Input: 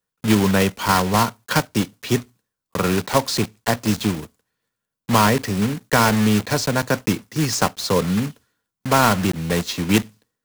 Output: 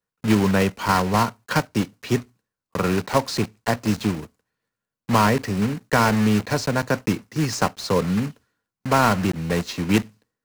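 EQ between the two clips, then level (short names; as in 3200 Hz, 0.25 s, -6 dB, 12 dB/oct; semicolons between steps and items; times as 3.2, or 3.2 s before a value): bell 3400 Hz -4.5 dB 0.23 oct; high shelf 6000 Hz -8 dB; -1.5 dB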